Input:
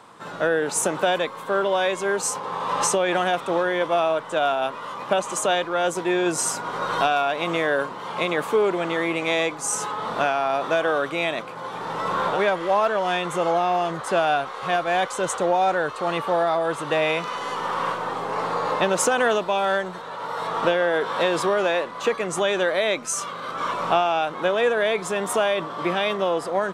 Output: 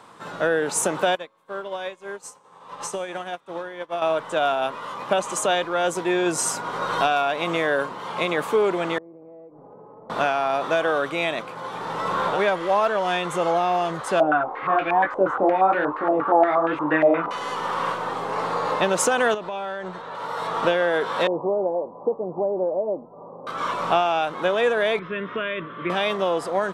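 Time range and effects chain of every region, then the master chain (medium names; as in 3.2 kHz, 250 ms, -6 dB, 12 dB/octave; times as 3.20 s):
1.15–4.02 s: feedback comb 110 Hz, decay 1.6 s, mix 50% + upward expansion 2.5:1, over -39 dBFS
8.98–10.10 s: four-pole ladder low-pass 730 Hz, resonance 25% + compression 12:1, threshold -41 dBFS
14.20–17.31 s: peaking EQ 300 Hz +14 dB 0.38 oct + chorus 1.1 Hz, delay 19.5 ms, depth 7.3 ms + step-sequenced low-pass 8.5 Hz 660–2500 Hz
19.34–20.15 s: low-pass 11 kHz + treble shelf 5.1 kHz -10 dB + compression, threshold -26 dBFS
21.27–23.47 s: steep low-pass 880 Hz 48 dB/octave + bass shelf 110 Hz -10 dB + band-stop 670 Hz, Q 22
24.99–25.90 s: steep low-pass 4.6 kHz 72 dB/octave + static phaser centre 1.9 kHz, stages 4
whole clip: none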